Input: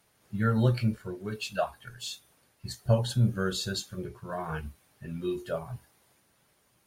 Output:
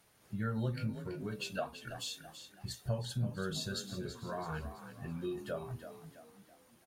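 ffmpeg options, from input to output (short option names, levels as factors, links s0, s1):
-filter_complex "[0:a]acompressor=threshold=0.00891:ratio=2,asplit=6[s0][s1][s2][s3][s4][s5];[s1]adelay=331,afreqshift=37,volume=0.299[s6];[s2]adelay=662,afreqshift=74,volume=0.129[s7];[s3]adelay=993,afreqshift=111,volume=0.055[s8];[s4]adelay=1324,afreqshift=148,volume=0.0237[s9];[s5]adelay=1655,afreqshift=185,volume=0.0102[s10];[s0][s6][s7][s8][s9][s10]amix=inputs=6:normalize=0"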